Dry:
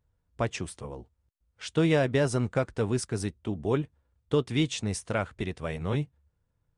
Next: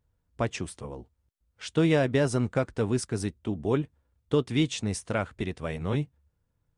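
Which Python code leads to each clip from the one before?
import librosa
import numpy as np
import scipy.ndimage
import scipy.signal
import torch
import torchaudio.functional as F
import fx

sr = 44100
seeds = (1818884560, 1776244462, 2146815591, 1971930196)

y = fx.peak_eq(x, sr, hz=260.0, db=2.5, octaves=0.77)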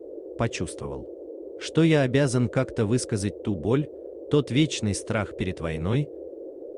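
y = fx.dynamic_eq(x, sr, hz=860.0, q=0.79, threshold_db=-38.0, ratio=4.0, max_db=-4)
y = fx.dmg_noise_band(y, sr, seeds[0], low_hz=310.0, high_hz=550.0, level_db=-43.0)
y = F.gain(torch.from_numpy(y), 4.0).numpy()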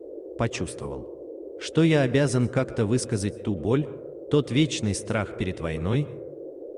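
y = fx.rev_plate(x, sr, seeds[1], rt60_s=0.7, hf_ratio=0.35, predelay_ms=110, drr_db=17.5)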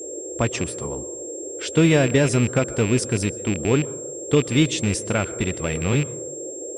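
y = fx.rattle_buzz(x, sr, strikes_db=-26.0, level_db=-23.0)
y = y + 10.0 ** (-37.0 / 20.0) * np.sin(2.0 * np.pi * 7500.0 * np.arange(len(y)) / sr)
y = F.gain(torch.from_numpy(y), 3.5).numpy()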